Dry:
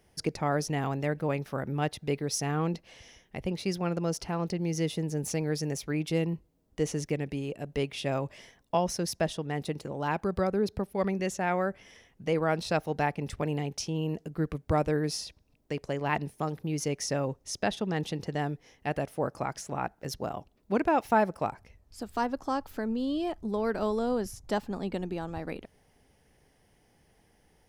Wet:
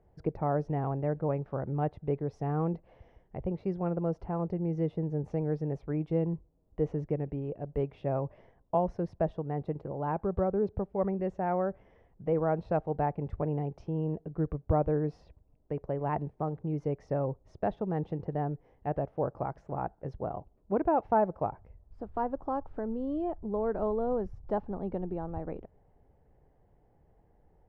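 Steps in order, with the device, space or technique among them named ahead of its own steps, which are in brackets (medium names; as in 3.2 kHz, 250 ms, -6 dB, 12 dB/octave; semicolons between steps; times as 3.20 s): Chebyshev low-pass 800 Hz, order 2; low shelf boost with a cut just above (bass shelf 82 Hz +7.5 dB; peaking EQ 240 Hz -5 dB 0.57 oct)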